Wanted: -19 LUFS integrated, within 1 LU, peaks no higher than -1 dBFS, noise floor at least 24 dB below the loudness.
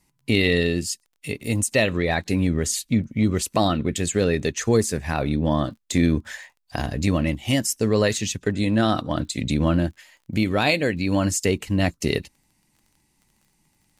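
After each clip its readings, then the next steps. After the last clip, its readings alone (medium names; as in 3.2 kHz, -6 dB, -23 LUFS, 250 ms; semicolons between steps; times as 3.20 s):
tick rate 21 per s; loudness -23.0 LUFS; peak level -7.0 dBFS; loudness target -19.0 LUFS
-> de-click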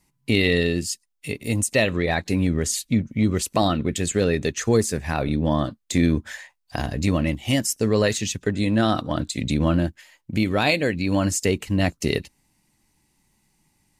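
tick rate 0 per s; loudness -23.0 LUFS; peak level -7.0 dBFS; loudness target -19.0 LUFS
-> trim +4 dB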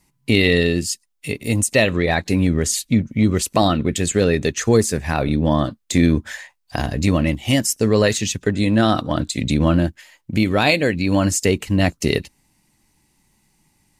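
loudness -19.0 LUFS; peak level -3.0 dBFS; noise floor -66 dBFS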